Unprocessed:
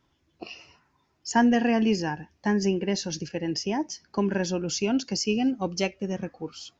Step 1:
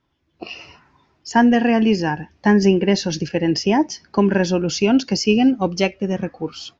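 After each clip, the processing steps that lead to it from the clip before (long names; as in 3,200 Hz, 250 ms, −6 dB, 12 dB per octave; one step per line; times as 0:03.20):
low-pass filter 4,700 Hz 12 dB per octave
automatic gain control gain up to 14 dB
level −1.5 dB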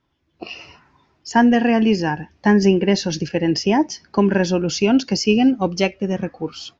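no processing that can be heard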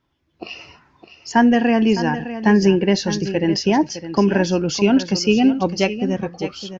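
single-tap delay 610 ms −12 dB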